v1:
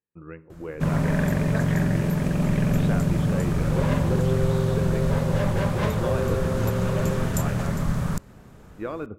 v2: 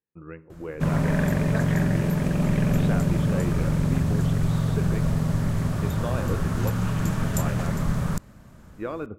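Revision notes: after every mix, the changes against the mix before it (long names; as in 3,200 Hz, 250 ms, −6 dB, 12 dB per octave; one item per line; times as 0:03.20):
second sound: muted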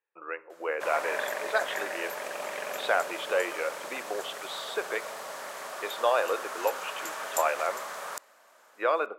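speech +10.5 dB
master: add high-pass filter 560 Hz 24 dB per octave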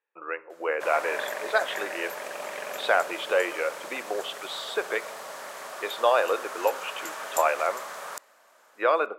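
speech +3.5 dB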